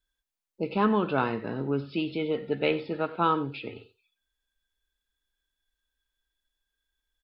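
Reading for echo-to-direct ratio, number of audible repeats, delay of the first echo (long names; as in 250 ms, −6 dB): −18.0 dB, 1, 93 ms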